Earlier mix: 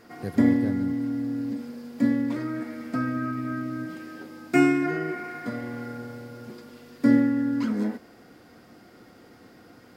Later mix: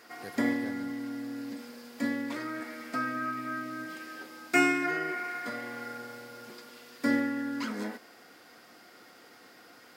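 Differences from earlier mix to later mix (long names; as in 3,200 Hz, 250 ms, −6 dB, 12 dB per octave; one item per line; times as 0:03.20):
background +4.0 dB
master: add high-pass filter 1,200 Hz 6 dB per octave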